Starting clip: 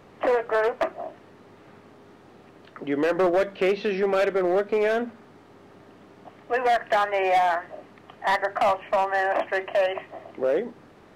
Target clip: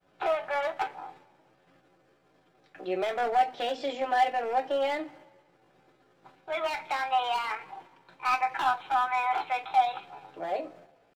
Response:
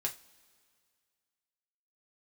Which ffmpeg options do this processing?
-filter_complex "[0:a]agate=range=0.0224:threshold=0.00708:ratio=3:detection=peak[s0];[1:a]atrim=start_sample=2205,asetrate=66150,aresample=44100[s1];[s0][s1]afir=irnorm=-1:irlink=0,asetrate=57191,aresample=44100,atempo=0.771105,volume=0.631"

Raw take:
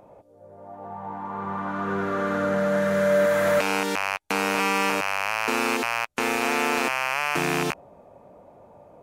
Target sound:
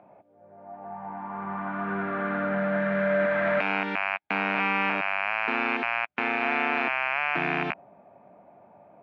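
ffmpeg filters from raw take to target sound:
-af "highpass=130,equalizer=f=200:t=q:w=4:g=4,equalizer=f=490:t=q:w=4:g=-8,equalizer=f=700:t=q:w=4:g=6,equalizer=f=1600:t=q:w=4:g=5,equalizer=f=2300:t=q:w=4:g=6,lowpass=f=3000:w=0.5412,lowpass=f=3000:w=1.3066,volume=0.596"

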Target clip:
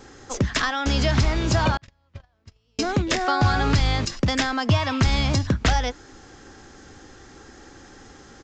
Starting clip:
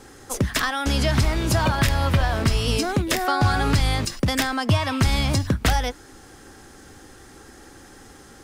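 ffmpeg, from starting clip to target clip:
-filter_complex "[0:a]aresample=16000,aresample=44100,asettb=1/sr,asplit=3[s0][s1][s2];[s0]atrim=end=1.774[s3];[s1]atrim=start=1.77:end=2.79,asetpts=PTS-STARTPTS,afade=t=in:d=0.004:c=qsin,afade=t=out:st=1.016:d=0.004:c=qsin,agate=range=0.00631:threshold=0.224:ratio=16:detection=peak[s4];[s2]atrim=start=2.786[s5];[s3][s4]acrossfade=d=0.004:c1=hsin:c2=qsin[s6];[s6][s5]acrossfade=d=0.004:c1=qsin:c2=hsin"

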